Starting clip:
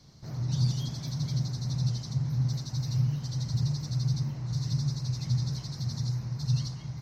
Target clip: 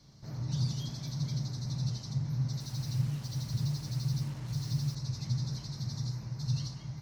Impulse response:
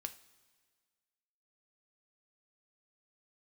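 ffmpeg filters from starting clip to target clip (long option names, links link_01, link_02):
-filter_complex "[1:a]atrim=start_sample=2205[link_01];[0:a][link_01]afir=irnorm=-1:irlink=0,asettb=1/sr,asplit=3[link_02][link_03][link_04];[link_02]atrim=end=2.604[link_05];[link_03]atrim=start=2.6:end=4.95,asetpts=PTS-STARTPTS,afade=type=in:duration=0.004:curve=qsin,afade=type=out:start_time=2.346:duration=0.004:curve=qsin,acrusher=bits=7:mix=0:aa=0.5[link_06];[link_04]atrim=start=4.946[link_07];[link_05][link_06]acrossfade=duration=0.004:curve1=hsin:curve2=qsin[link_08];[link_08][link_07]acrossfade=duration=0.004:curve1=qsin:curve2=hsin"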